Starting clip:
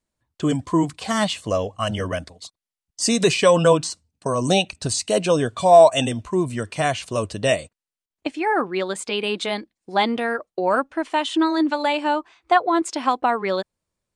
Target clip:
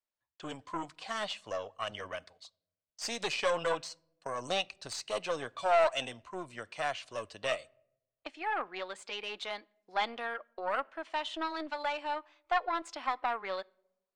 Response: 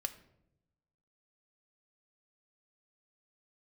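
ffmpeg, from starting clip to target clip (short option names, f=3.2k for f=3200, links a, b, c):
-filter_complex "[0:a]aeval=exprs='(tanh(3.98*val(0)+0.7)-tanh(0.7))/3.98':c=same,acrossover=split=520 5900:gain=0.158 1 0.2[a][b][c];[a][b][c]amix=inputs=3:normalize=0,asplit=2[d][e];[1:a]atrim=start_sample=2205[f];[e][f]afir=irnorm=-1:irlink=0,volume=-12.5dB[g];[d][g]amix=inputs=2:normalize=0,volume=-8.5dB"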